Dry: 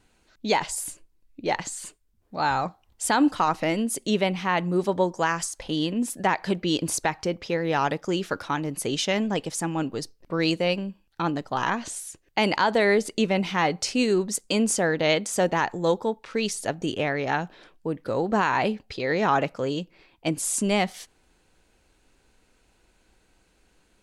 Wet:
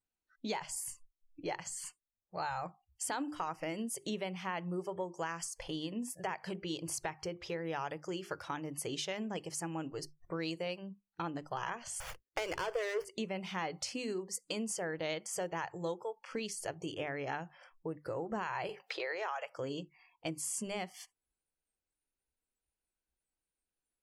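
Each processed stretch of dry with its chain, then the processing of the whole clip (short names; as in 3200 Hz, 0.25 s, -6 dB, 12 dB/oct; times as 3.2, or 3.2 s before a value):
12–13.05 sample leveller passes 2 + speaker cabinet 370–9100 Hz, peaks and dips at 480 Hz +6 dB, 850 Hz -9 dB, 6000 Hz -4 dB + running maximum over 5 samples
18.69–19.57 HPF 600 Hz + three-band squash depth 70%
whole clip: compressor 3:1, threshold -32 dBFS; notches 50/100/150/200/250/300/350/400 Hz; spectral noise reduction 27 dB; gain -5 dB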